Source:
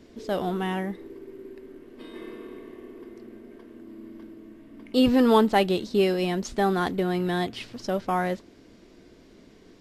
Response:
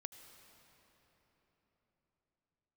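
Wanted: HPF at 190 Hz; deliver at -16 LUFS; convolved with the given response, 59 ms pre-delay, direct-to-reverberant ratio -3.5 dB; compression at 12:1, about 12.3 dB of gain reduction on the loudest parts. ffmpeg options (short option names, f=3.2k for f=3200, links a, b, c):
-filter_complex "[0:a]highpass=190,acompressor=threshold=-28dB:ratio=12,asplit=2[a][b];[1:a]atrim=start_sample=2205,adelay=59[c];[b][c]afir=irnorm=-1:irlink=0,volume=8dB[d];[a][d]amix=inputs=2:normalize=0,volume=14dB"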